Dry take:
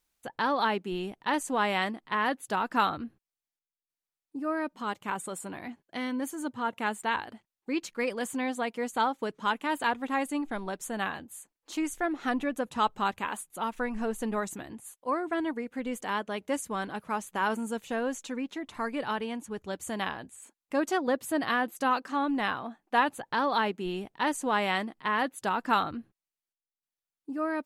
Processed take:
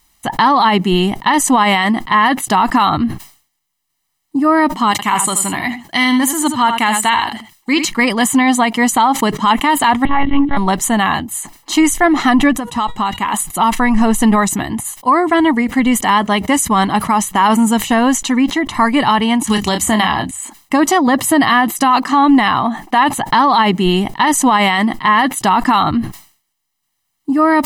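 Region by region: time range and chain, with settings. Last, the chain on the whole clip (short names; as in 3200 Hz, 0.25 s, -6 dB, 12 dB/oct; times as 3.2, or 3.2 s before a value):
4.91–7.85 tilt shelf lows -4.5 dB, about 1400 Hz + echo 79 ms -10 dB
10.05–10.57 notches 50/100/150/200/250/300/350/400 Hz + notch comb 190 Hz + monotone LPC vocoder at 8 kHz 280 Hz
12.53–13.34 resonator 480 Hz, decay 0.35 s, mix 50% + compressor 10:1, threshold -34 dBFS
19.47–20.31 notches 50/100/150/200/250 Hz + doubler 28 ms -8 dB + three-band squash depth 100%
whole clip: comb 1 ms, depth 71%; maximiser +22.5 dB; sustainer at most 130 dB/s; gain -2.5 dB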